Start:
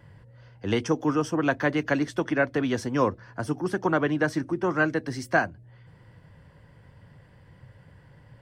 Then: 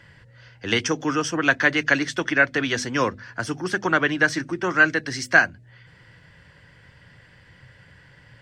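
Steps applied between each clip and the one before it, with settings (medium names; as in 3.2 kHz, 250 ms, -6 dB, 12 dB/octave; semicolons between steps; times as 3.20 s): high-order bell 3.3 kHz +11 dB 2.8 oct; hum notches 50/100/150/200/250 Hz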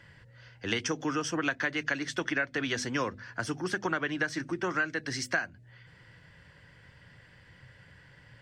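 compression 6:1, threshold -22 dBFS, peak gain reduction 12 dB; trim -4.5 dB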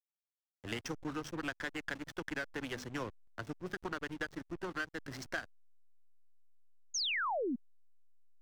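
valve stage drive 18 dB, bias 0.45; hysteresis with a dead band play -30 dBFS; painted sound fall, 6.94–7.56 s, 220–6800 Hz -29 dBFS; trim -5.5 dB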